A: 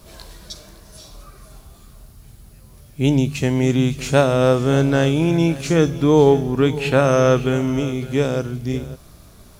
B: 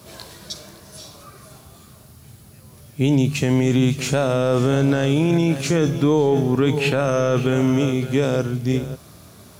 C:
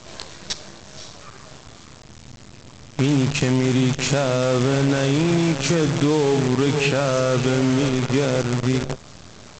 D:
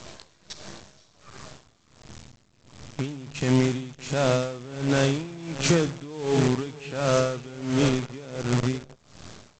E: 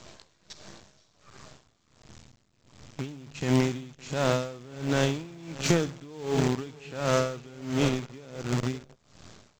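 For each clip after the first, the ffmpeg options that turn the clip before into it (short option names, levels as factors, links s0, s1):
-af "highpass=f=84:w=0.5412,highpass=f=84:w=1.3066,alimiter=limit=0.251:level=0:latency=1:release=13,volume=1.41"
-af "aresample=16000,acrusher=bits=5:dc=4:mix=0:aa=0.000001,aresample=44100,acompressor=threshold=0.0501:ratio=2,volume=1.88"
-af "aeval=exprs='val(0)*pow(10,-21*(0.5-0.5*cos(2*PI*1.4*n/s))/20)':c=same"
-af "aeval=exprs='0.376*(cos(1*acos(clip(val(0)/0.376,-1,1)))-cos(1*PI/2))+0.0596*(cos(3*acos(clip(val(0)/0.376,-1,1)))-cos(3*PI/2))+0.00237*(cos(7*acos(clip(val(0)/0.376,-1,1)))-cos(7*PI/2))':c=same,acrusher=bits=9:mode=log:mix=0:aa=0.000001"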